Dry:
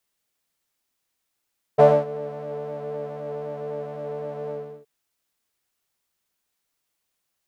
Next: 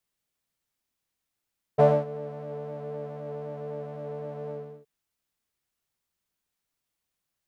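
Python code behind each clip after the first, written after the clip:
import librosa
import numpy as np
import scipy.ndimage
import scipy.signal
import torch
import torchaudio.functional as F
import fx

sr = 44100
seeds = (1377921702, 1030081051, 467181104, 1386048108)

y = fx.bass_treble(x, sr, bass_db=6, treble_db=-1)
y = y * librosa.db_to_amplitude(-5.5)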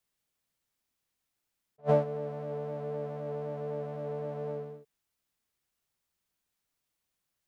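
y = fx.attack_slew(x, sr, db_per_s=470.0)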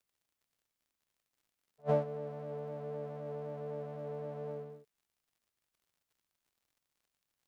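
y = fx.dmg_crackle(x, sr, seeds[0], per_s=84.0, level_db=-59.0)
y = y * librosa.db_to_amplitude(-5.0)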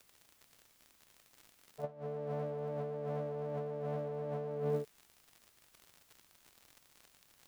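y = fx.over_compress(x, sr, threshold_db=-50.0, ratio=-1.0)
y = y * librosa.db_to_amplitude(10.0)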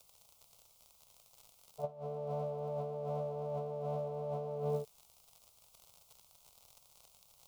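y = fx.fixed_phaser(x, sr, hz=720.0, stages=4)
y = y * librosa.db_to_amplitude(3.0)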